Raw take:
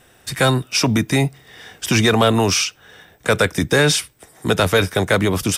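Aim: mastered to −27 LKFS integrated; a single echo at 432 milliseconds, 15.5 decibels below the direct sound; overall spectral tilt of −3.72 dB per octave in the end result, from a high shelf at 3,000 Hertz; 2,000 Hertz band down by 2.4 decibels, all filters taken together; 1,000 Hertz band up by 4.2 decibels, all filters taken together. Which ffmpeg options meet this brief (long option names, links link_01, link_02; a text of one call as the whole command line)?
ffmpeg -i in.wav -af "equalizer=frequency=1000:width_type=o:gain=7.5,equalizer=frequency=2000:width_type=o:gain=-8.5,highshelf=frequency=3000:gain=5,aecho=1:1:432:0.168,volume=-10.5dB" out.wav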